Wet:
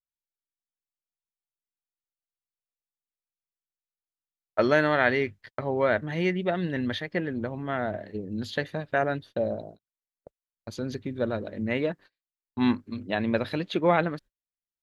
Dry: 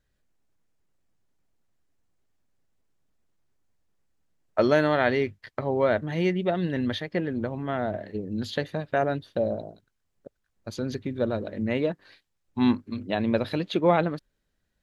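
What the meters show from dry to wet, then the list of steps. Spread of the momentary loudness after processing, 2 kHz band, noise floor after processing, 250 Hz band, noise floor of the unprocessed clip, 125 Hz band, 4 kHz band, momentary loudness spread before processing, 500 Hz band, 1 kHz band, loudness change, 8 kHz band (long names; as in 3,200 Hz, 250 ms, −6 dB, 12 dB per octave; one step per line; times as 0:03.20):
12 LU, +3.0 dB, below −85 dBFS, −2.0 dB, −77 dBFS, −2.0 dB, −1.0 dB, 11 LU, −1.5 dB, −0.5 dB, −1.0 dB, can't be measured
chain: dynamic equaliser 1,800 Hz, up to +6 dB, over −40 dBFS, Q 1.2
noise gate −44 dBFS, range −31 dB
level −2 dB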